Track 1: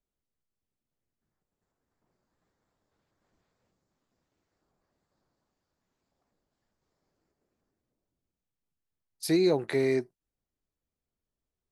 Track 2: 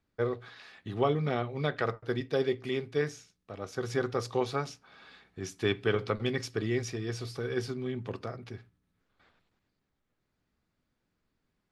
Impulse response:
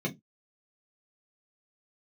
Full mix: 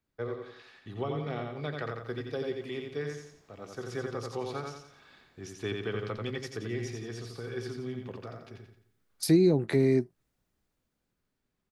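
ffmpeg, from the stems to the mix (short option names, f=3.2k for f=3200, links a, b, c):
-filter_complex "[0:a]dynaudnorm=f=400:g=7:m=12.5dB,volume=-2.5dB,asplit=2[a][b];[1:a]volume=1.5dB,asplit=2[c][d];[d]volume=-11.5dB[e];[b]apad=whole_len=516530[f];[c][f]sidechaingate=range=-7dB:threshold=-47dB:ratio=16:detection=peak[g];[e]aecho=0:1:87|174|261|348|435|522:1|0.4|0.16|0.064|0.0256|0.0102[h];[a][g][h]amix=inputs=3:normalize=0,acrossover=split=290[i][j];[j]acompressor=threshold=-31dB:ratio=10[k];[i][k]amix=inputs=2:normalize=0"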